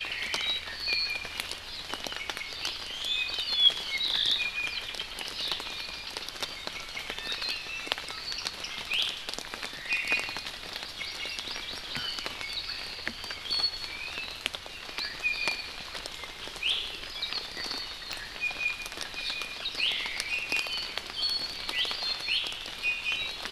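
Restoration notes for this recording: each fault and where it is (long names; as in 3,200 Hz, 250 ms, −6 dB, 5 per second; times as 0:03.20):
0:18.13: click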